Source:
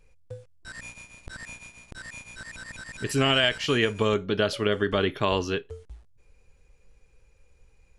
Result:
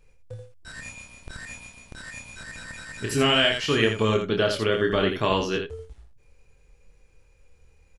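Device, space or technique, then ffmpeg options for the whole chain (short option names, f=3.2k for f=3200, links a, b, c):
slapback doubling: -filter_complex "[0:a]asplit=3[a][b][c];[b]adelay=27,volume=-4.5dB[d];[c]adelay=83,volume=-6.5dB[e];[a][d][e]amix=inputs=3:normalize=0"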